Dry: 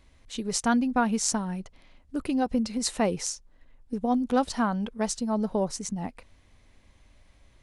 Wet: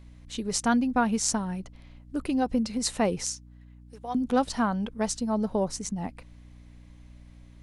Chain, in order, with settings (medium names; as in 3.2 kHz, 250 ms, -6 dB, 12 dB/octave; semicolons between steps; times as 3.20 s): 3.24–4.15 s: Bessel high-pass 1 kHz, order 2; hum 60 Hz, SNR 20 dB